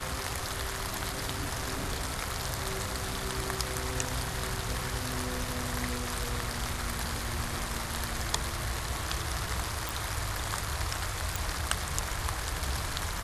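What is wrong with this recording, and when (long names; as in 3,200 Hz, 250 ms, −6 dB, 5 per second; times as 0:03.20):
0:09.89: click
0:11.36: click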